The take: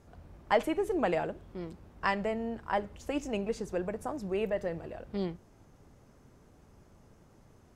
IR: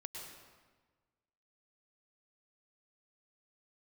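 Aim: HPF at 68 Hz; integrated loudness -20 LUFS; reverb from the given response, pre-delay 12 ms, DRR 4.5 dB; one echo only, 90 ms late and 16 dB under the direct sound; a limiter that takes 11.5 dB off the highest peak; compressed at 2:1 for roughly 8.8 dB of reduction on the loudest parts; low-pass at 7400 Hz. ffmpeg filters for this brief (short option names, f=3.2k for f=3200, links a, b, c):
-filter_complex "[0:a]highpass=68,lowpass=7.4k,acompressor=threshold=-37dB:ratio=2,alimiter=level_in=7dB:limit=-24dB:level=0:latency=1,volume=-7dB,aecho=1:1:90:0.158,asplit=2[a][b];[1:a]atrim=start_sample=2205,adelay=12[c];[b][c]afir=irnorm=-1:irlink=0,volume=-2dB[d];[a][d]amix=inputs=2:normalize=0,volume=20.5dB"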